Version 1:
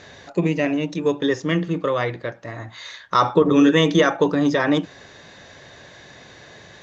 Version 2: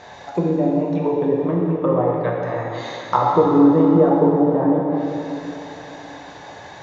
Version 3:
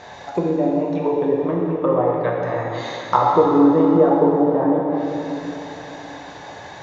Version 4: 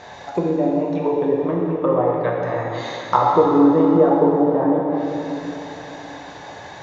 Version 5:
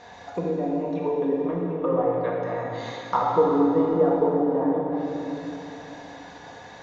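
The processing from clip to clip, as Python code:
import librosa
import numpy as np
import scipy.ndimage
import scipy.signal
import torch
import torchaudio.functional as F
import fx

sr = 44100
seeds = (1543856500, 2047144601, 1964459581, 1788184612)

y1 = fx.env_lowpass_down(x, sr, base_hz=490.0, full_db=-17.0)
y1 = fx.peak_eq(y1, sr, hz=830.0, db=14.0, octaves=0.79)
y1 = fx.rev_plate(y1, sr, seeds[0], rt60_s=3.3, hf_ratio=1.0, predelay_ms=0, drr_db=-2.5)
y1 = y1 * 10.0 ** (-2.5 / 20.0)
y2 = fx.dynamic_eq(y1, sr, hz=160.0, q=0.92, threshold_db=-29.0, ratio=4.0, max_db=-6)
y2 = y2 * 10.0 ** (1.5 / 20.0)
y3 = y2
y4 = fx.room_shoebox(y3, sr, seeds[1], volume_m3=2600.0, walls='furnished', distance_m=1.8)
y4 = y4 * 10.0 ** (-7.5 / 20.0)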